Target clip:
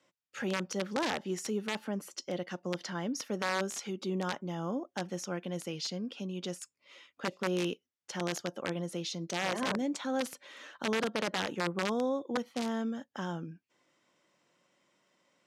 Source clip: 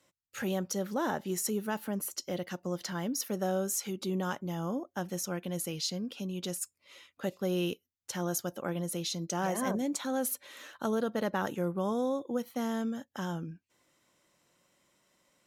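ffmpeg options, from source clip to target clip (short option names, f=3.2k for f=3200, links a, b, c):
-af "bandreject=f=4k:w=16,aeval=exprs='(mod(14.1*val(0)+1,2)-1)/14.1':c=same,highpass=160,lowpass=5.5k"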